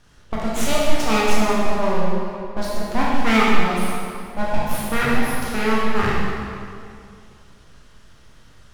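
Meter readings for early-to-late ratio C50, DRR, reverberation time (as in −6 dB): −2.5 dB, −6.5 dB, 2.4 s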